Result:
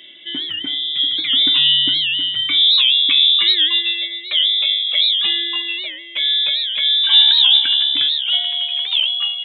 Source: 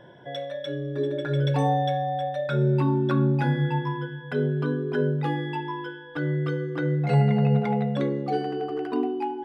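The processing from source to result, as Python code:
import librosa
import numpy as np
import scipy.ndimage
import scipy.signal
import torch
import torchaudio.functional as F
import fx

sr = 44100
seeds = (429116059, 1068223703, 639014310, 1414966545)

y = fx.freq_invert(x, sr, carrier_hz=3700)
y = fx.highpass(y, sr, hz=fx.steps((0.0, 95.0), (8.86, 450.0)), slope=24)
y = fx.record_warp(y, sr, rpm=78.0, depth_cents=160.0)
y = F.gain(torch.from_numpy(y), 8.0).numpy()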